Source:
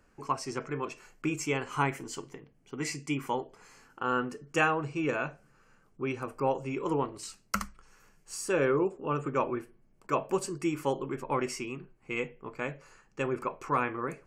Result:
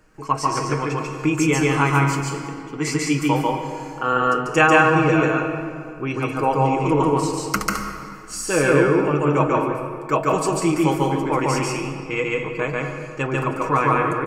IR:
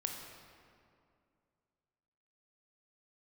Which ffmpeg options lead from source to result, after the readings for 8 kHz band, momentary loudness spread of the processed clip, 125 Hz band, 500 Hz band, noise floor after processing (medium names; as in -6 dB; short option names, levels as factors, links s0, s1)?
+11.5 dB, 11 LU, +16.0 dB, +11.5 dB, -35 dBFS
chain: -filter_complex "[0:a]aecho=1:1:6.4:0.5,asplit=2[s0][s1];[1:a]atrim=start_sample=2205,adelay=143[s2];[s1][s2]afir=irnorm=-1:irlink=0,volume=1.06[s3];[s0][s3]amix=inputs=2:normalize=0,volume=2.37"